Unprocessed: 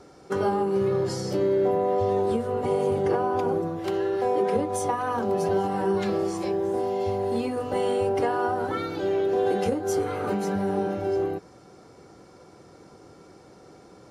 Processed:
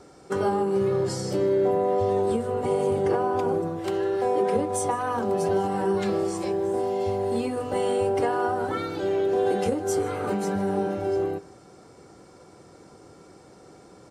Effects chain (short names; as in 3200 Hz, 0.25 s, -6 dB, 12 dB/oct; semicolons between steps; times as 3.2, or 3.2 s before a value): bell 8100 Hz +8.5 dB 0.26 oct; echo 0.153 s -20.5 dB